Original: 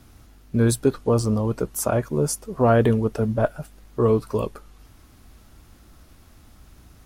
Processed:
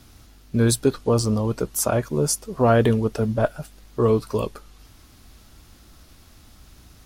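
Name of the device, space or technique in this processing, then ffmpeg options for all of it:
presence and air boost: -af "equalizer=f=4400:t=o:w=1.6:g=6,highshelf=f=10000:g=3.5"

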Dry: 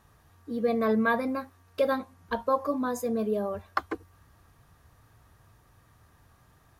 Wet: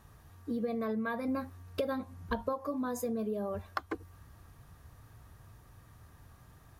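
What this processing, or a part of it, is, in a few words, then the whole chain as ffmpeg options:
ASMR close-microphone chain: -filter_complex "[0:a]lowshelf=f=240:g=5.5,acompressor=threshold=0.0282:ratio=10,highshelf=f=9200:g=3.5,asettb=1/sr,asplit=3[s0][s1][s2];[s0]atrim=end=1.284[s3];[s1]atrim=start=1.28:end=2.53,asetpts=PTS-STARTPTS,afade=t=in:d=0.004:c=qsin,afade=t=out:st=1.246:d=0.004:c=qsin,lowshelf=f=220:g=7[s4];[s2]atrim=start=2.526[s5];[s3][s4]acrossfade=d=0.004:c1=hsin:c2=qsin[s6];[s6][s5]acrossfade=d=0.004:c1=qsin:c2=hsin"

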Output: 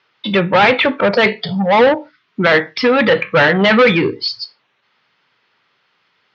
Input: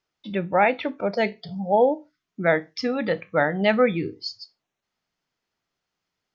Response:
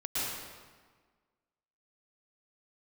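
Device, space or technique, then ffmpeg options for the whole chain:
overdrive pedal into a guitar cabinet: -filter_complex "[0:a]asplit=2[s0][s1];[s1]highpass=f=720:p=1,volume=20,asoftclip=type=tanh:threshold=0.501[s2];[s0][s2]amix=inputs=2:normalize=0,lowpass=f=4900:p=1,volume=0.501,highpass=88,equalizer=f=120:t=q:w=4:g=8,equalizer=f=310:t=q:w=4:g=-4,equalizer=f=690:t=q:w=4:g=-8,lowpass=f=4100:w=0.5412,lowpass=f=4100:w=1.3066,volume=1.68"

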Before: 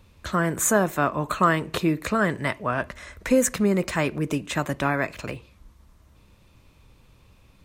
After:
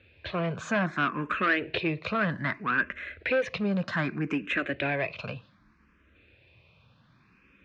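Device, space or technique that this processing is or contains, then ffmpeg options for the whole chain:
barber-pole phaser into a guitar amplifier: -filter_complex "[0:a]asplit=2[s0][s1];[s1]afreqshift=0.64[s2];[s0][s2]amix=inputs=2:normalize=1,asoftclip=type=tanh:threshold=0.0891,highpass=99,equalizer=f=880:t=q:w=4:g=-6,equalizer=f=1600:t=q:w=4:g=8,equalizer=f=2500:t=q:w=4:g=8,lowpass=f=4200:w=0.5412,lowpass=f=4200:w=1.3066"

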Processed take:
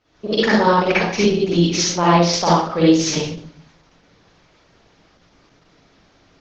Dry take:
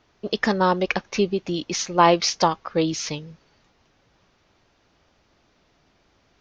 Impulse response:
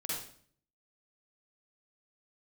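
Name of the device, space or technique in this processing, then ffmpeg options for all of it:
speakerphone in a meeting room: -filter_complex "[1:a]atrim=start_sample=2205[s0];[0:a][s0]afir=irnorm=-1:irlink=0,dynaudnorm=f=100:g=3:m=2.24" -ar 48000 -c:a libopus -b:a 12k

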